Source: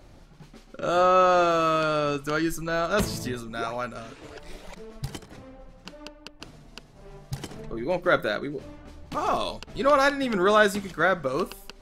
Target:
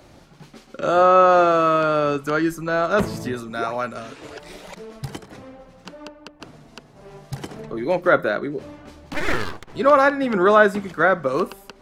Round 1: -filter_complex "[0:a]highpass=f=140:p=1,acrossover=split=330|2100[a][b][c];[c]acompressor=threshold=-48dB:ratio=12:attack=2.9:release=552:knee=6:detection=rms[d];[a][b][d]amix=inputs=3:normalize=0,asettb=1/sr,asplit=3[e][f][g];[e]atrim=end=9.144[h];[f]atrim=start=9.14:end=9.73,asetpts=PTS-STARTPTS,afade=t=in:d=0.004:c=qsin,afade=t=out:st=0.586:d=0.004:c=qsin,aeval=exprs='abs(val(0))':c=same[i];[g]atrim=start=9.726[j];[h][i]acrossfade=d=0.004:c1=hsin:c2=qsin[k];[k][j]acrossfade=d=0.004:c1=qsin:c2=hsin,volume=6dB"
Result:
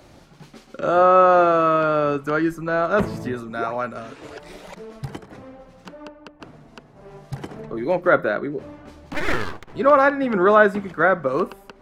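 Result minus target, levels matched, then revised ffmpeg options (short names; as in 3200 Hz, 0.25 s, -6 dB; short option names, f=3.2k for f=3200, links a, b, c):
compressor: peak gain reduction +8 dB
-filter_complex "[0:a]highpass=f=140:p=1,acrossover=split=330|2100[a][b][c];[c]acompressor=threshold=-39dB:ratio=12:attack=2.9:release=552:knee=6:detection=rms[d];[a][b][d]amix=inputs=3:normalize=0,asettb=1/sr,asplit=3[e][f][g];[e]atrim=end=9.144[h];[f]atrim=start=9.14:end=9.73,asetpts=PTS-STARTPTS,afade=t=in:d=0.004:c=qsin,afade=t=out:st=0.586:d=0.004:c=qsin,aeval=exprs='abs(val(0))':c=same[i];[g]atrim=start=9.726[j];[h][i]acrossfade=d=0.004:c1=hsin:c2=qsin[k];[k][j]acrossfade=d=0.004:c1=qsin:c2=hsin,volume=6dB"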